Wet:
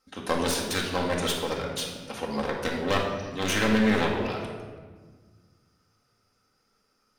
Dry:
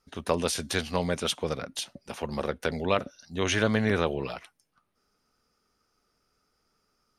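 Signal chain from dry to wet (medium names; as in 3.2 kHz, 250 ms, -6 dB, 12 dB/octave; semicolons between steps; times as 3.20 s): one-sided wavefolder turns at -27.5 dBFS; bass shelf 140 Hz -10.5 dB; simulated room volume 1500 m³, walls mixed, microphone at 2.1 m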